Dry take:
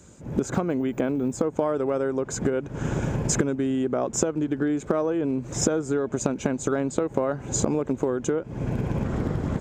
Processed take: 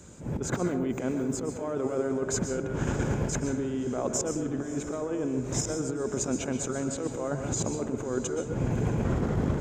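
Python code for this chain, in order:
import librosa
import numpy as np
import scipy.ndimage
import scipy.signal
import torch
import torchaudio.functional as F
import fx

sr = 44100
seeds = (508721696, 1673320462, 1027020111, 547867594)

y = fx.over_compress(x, sr, threshold_db=-27.0, ratio=-0.5)
y = fx.echo_diffused(y, sr, ms=608, feedback_pct=45, wet_db=-14.5)
y = fx.rev_plate(y, sr, seeds[0], rt60_s=0.55, hf_ratio=0.7, predelay_ms=110, drr_db=6.5)
y = y * 10.0 ** (-2.0 / 20.0)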